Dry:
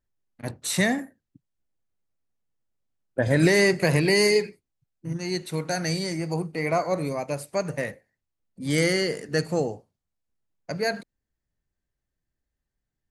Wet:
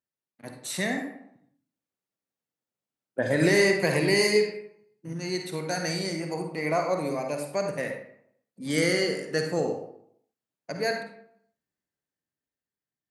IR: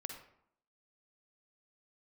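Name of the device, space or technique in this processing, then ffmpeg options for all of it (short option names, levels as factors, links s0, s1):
far laptop microphone: -filter_complex "[1:a]atrim=start_sample=2205[s0];[0:a][s0]afir=irnorm=-1:irlink=0,highpass=180,dynaudnorm=f=110:g=21:m=1.78,volume=0.668"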